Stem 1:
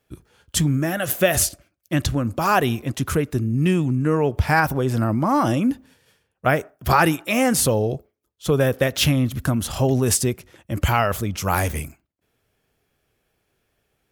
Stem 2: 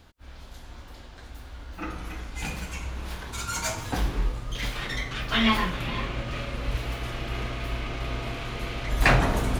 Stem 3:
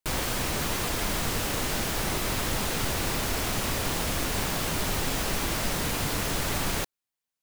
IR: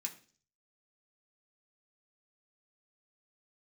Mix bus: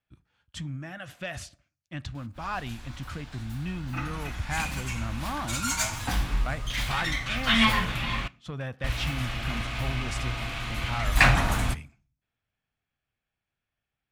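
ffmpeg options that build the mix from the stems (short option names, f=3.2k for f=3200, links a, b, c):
-filter_complex "[0:a]lowpass=3.9k,dynaudnorm=f=250:g=21:m=4dB,asoftclip=type=tanh:threshold=-8dB,volume=-13dB,asplit=2[a][b];[b]volume=-12dB[c];[1:a]adelay=2150,volume=1dB,asplit=3[d][e][f];[d]atrim=end=8.28,asetpts=PTS-STARTPTS,afade=t=out:st=8.276:d=0.004:c=hsin[g];[e]atrim=start=8.28:end=8.84,asetpts=PTS-STARTPTS,volume=0[h];[f]atrim=start=8.84,asetpts=PTS-STARTPTS,afade=t=in:d=0.004:c=hsin[i];[g][h][i]concat=n=3:v=0:a=1,asplit=2[j][k];[k]volume=-7.5dB[l];[3:a]atrim=start_sample=2205[m];[c][l]amix=inputs=2:normalize=0[n];[n][m]afir=irnorm=-1:irlink=0[o];[a][j][o]amix=inputs=3:normalize=0,equalizer=f=410:w=1.5:g=-13.5"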